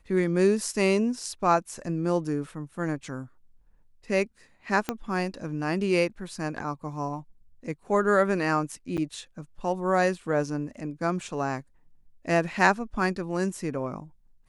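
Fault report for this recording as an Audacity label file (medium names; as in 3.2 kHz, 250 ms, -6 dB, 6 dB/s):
4.890000	4.890000	pop -12 dBFS
8.970000	8.980000	dropout 7.9 ms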